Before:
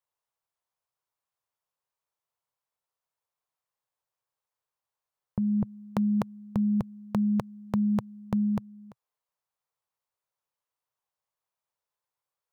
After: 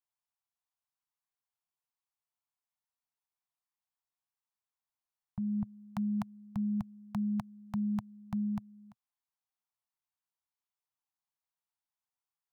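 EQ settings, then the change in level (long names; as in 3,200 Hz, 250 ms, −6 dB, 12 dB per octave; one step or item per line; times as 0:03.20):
elliptic band-stop filter 220–700 Hz
−7.0 dB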